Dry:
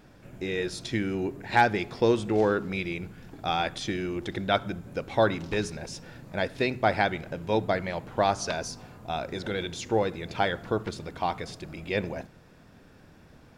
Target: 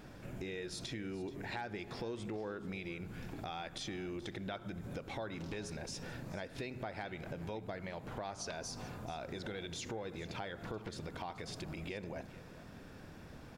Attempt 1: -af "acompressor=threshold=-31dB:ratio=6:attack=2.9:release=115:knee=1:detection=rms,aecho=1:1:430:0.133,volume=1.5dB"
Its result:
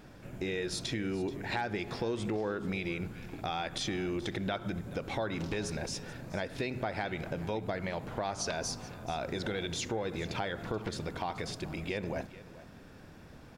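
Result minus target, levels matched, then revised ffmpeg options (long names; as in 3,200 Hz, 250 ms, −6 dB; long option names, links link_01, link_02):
downward compressor: peak gain reduction −8 dB
-af "acompressor=threshold=-40.5dB:ratio=6:attack=2.9:release=115:knee=1:detection=rms,aecho=1:1:430:0.133,volume=1.5dB"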